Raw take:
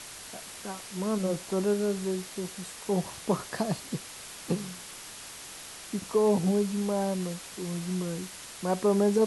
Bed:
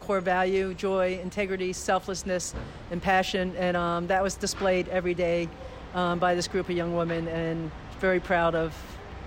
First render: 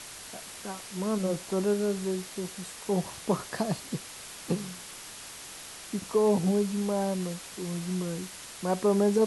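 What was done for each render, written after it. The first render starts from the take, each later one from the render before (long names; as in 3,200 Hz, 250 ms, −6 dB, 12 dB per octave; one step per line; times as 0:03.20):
no processing that can be heard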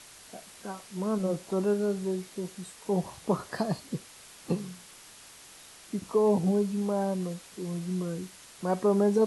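noise reduction from a noise print 7 dB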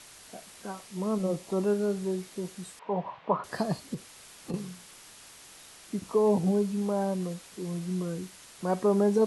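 0:00.85–0:01.66: notch filter 1,500 Hz, Q 8
0:02.79–0:03.44: loudspeaker in its box 200–2,900 Hz, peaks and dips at 230 Hz −5 dB, 350 Hz −8 dB, 630 Hz +4 dB, 1,000 Hz +9 dB
0:03.94–0:04.54: downward compressor, threshold −31 dBFS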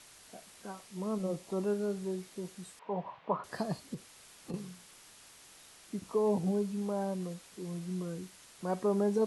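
level −5.5 dB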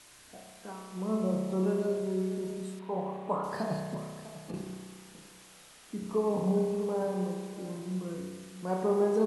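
single-tap delay 648 ms −15.5 dB
spring reverb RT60 1.6 s, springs 32 ms, chirp 35 ms, DRR 0 dB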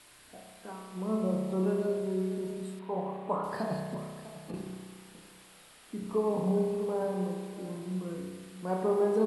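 parametric band 6,200 Hz −8.5 dB 0.42 octaves
mains-hum notches 50/100/150/200 Hz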